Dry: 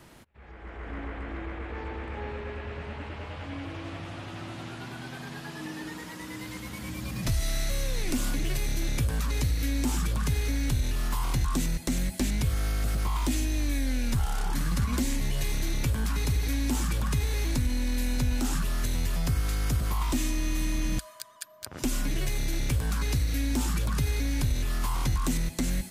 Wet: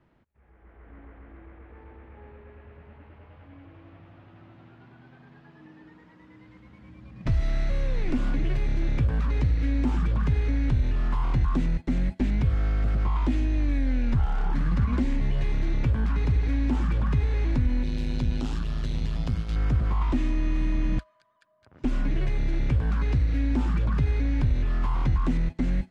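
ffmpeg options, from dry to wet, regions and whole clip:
ffmpeg -i in.wav -filter_complex "[0:a]asettb=1/sr,asplit=3[link_01][link_02][link_03];[link_01]atrim=end=17.834[link_04];[link_02]atrim=start=17.83:end=19.56,asetpts=PTS-STARTPTS,afade=type=in:duration=0.004:curve=qsin,afade=type=out:start_time=1.726:duration=0.004:curve=qsin,highshelf=frequency=2600:width_type=q:width=1.5:gain=8,tremolo=f=110:d=0.788[link_05];[link_03]atrim=start=19.556[link_06];[link_04][link_05]acrossfade=duration=0.004:curve1=hsin:curve2=qsin[link_07];[link_07][link_06]acrossfade=duration=0.004:curve1=qsin:curve2=hsin,agate=range=-14dB:threshold=-30dB:ratio=16:detection=peak,lowpass=2200,lowshelf=frequency=370:gain=4" out.wav

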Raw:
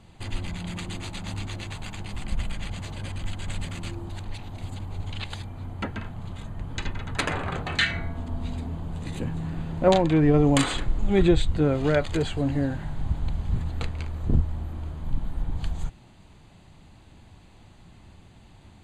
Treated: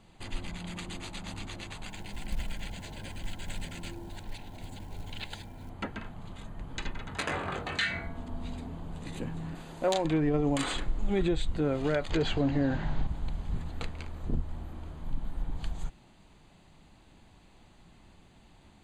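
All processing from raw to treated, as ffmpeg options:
ffmpeg -i in.wav -filter_complex "[0:a]asettb=1/sr,asplit=3[link_01][link_02][link_03];[link_01]atrim=end=1.884[link_04];[link_02]atrim=start=1.88:end=5.7,asetpts=PTS-STARTPTS,afade=type=in:duration=0.004:curve=qsin,afade=type=out:start_time=3.816:duration=0.004:curve=qsin,asuperstop=centerf=1200:order=12:qfactor=5.2,acrusher=bits=7:mode=log:mix=0:aa=0.000001[link_05];[link_03]atrim=start=5.696[link_06];[link_04][link_05]acrossfade=duration=0.004:curve1=hsin:curve2=qsin[link_07];[link_07][link_06]acrossfade=duration=0.004:curve1=qsin:curve2=hsin,asettb=1/sr,asplit=3[link_08][link_09][link_10];[link_08]atrim=end=7.094[link_11];[link_09]atrim=start=7.09:end=8.07,asetpts=PTS-STARTPTS,afade=type=in:duration=0.004:curve=qsin,afade=type=out:start_time=0.976:duration=0.004:curve=qsin,highpass=frequency=47:width=0.5412,highpass=frequency=47:width=1.3066,asplit=2[link_12][link_13];[link_13]adelay=21,volume=-5.5dB[link_14];[link_12][link_14]amix=inputs=2:normalize=0,atrim=end_sample=43218[link_15];[link_10]atrim=start=8.066[link_16];[link_11][link_15]acrossfade=duration=0.004:curve1=hsin:curve2=qsin[link_17];[link_17][link_16]acrossfade=duration=0.004:curve1=qsin:curve2=hsin,asettb=1/sr,asplit=3[link_18][link_19][link_20];[link_18]atrim=end=9.554[link_21];[link_19]atrim=start=9.55:end=10.05,asetpts=PTS-STARTPTS,afade=type=in:duration=0.004:curve=qsin,afade=type=out:start_time=0.496:duration=0.004:curve=qsin,bass=frequency=250:gain=-10,treble=frequency=4000:gain=10,asoftclip=type=hard:threshold=-9.5dB[link_22];[link_20]atrim=start=10.046[link_23];[link_21][link_22]acrossfade=duration=0.004:curve1=hsin:curve2=qsin[link_24];[link_24][link_23]acrossfade=duration=0.004:curve1=qsin:curve2=hsin,asettb=1/sr,asplit=3[link_25][link_26][link_27];[link_25]atrim=end=12.104[link_28];[link_26]atrim=start=12.1:end=13.07,asetpts=PTS-STARTPTS,afade=type=in:duration=0.004:curve=qsin,afade=type=out:start_time=0.966:duration=0.004:curve=qsin,lowpass=frequency=6100:width=0.5412,lowpass=frequency=6100:width=1.3066,acontrast=83[link_29];[link_27]atrim=start=13.066[link_30];[link_28][link_29]acrossfade=duration=0.004:curve1=hsin:curve2=qsin[link_31];[link_31][link_30]acrossfade=duration=0.004:curve1=qsin:curve2=hsin,alimiter=limit=-14dB:level=0:latency=1:release=115,equalizer=frequency=93:width_type=o:width=1.1:gain=-8,volume=-4dB" out.wav

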